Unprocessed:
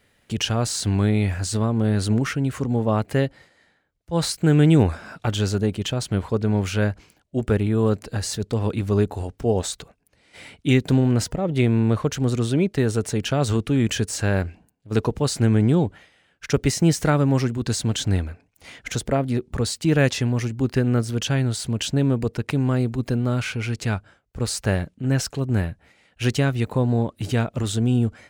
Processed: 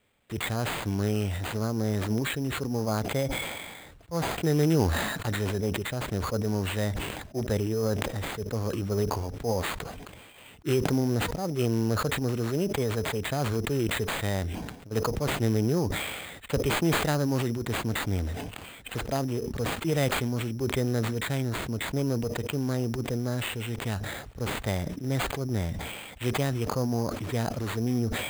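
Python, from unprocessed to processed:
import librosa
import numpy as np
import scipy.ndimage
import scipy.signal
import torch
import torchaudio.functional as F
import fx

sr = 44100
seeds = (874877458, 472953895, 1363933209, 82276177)

y = fx.formant_shift(x, sr, semitones=3)
y = fx.sample_hold(y, sr, seeds[0], rate_hz=5600.0, jitter_pct=0)
y = fx.sustainer(y, sr, db_per_s=34.0)
y = F.gain(torch.from_numpy(y), -8.0).numpy()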